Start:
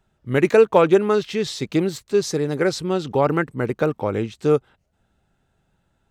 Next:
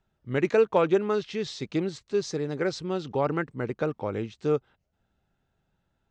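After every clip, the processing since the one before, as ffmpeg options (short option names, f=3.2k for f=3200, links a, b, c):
-af "lowpass=f=6.8k:w=0.5412,lowpass=f=6.8k:w=1.3066,volume=-7.5dB"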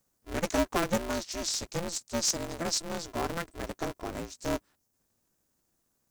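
-af "aexciter=amount=15.5:drive=2.9:freq=4.9k,aeval=exprs='val(0)*sgn(sin(2*PI*170*n/s))':c=same,volume=-6.5dB"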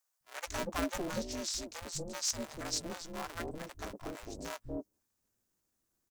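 -filter_complex "[0:a]acrossover=split=160|660[a][b][c];[a]adelay=200[d];[b]adelay=240[e];[d][e][c]amix=inputs=3:normalize=0,volume=-5.5dB"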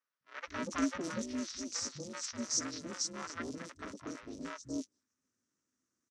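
-filter_complex "[0:a]highpass=100,equalizer=f=260:t=q:w=4:g=10,equalizer=f=760:t=q:w=4:g=-9,equalizer=f=1.3k:t=q:w=4:g=6,equalizer=f=1.9k:t=q:w=4:g=4,equalizer=f=5.8k:t=q:w=4:g=8,lowpass=f=8.2k:w=0.5412,lowpass=f=8.2k:w=1.3066,acrossover=split=4100[a][b];[b]adelay=280[c];[a][c]amix=inputs=2:normalize=0,volume=-3dB"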